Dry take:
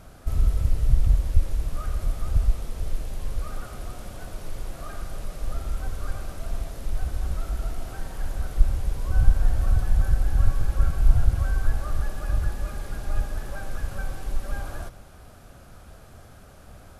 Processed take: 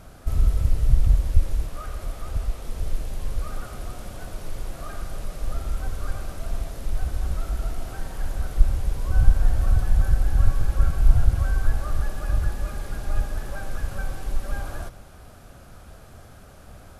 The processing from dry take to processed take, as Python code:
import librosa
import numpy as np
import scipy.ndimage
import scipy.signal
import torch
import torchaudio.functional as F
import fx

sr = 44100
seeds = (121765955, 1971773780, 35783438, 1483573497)

y = fx.bass_treble(x, sr, bass_db=-7, treble_db=-2, at=(1.66, 2.65))
y = y * 10.0 ** (1.5 / 20.0)